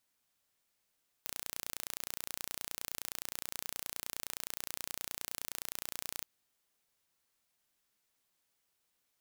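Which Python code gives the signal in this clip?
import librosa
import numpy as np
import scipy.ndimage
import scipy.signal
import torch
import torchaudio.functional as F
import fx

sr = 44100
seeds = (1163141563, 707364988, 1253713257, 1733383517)

y = 10.0 ** (-11.5 / 20.0) * (np.mod(np.arange(round(4.99 * sr)), round(sr / 29.6)) == 0)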